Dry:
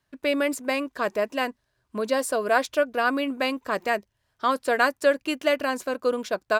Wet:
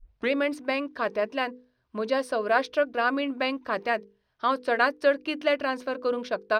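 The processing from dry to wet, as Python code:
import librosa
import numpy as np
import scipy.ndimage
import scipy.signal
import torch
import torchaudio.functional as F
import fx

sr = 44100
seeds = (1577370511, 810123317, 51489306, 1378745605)

y = fx.tape_start_head(x, sr, length_s=0.32)
y = scipy.signal.savgol_filter(y, 15, 4, mode='constant')
y = fx.hum_notches(y, sr, base_hz=50, count=10)
y = F.gain(torch.from_numpy(y), -1.5).numpy()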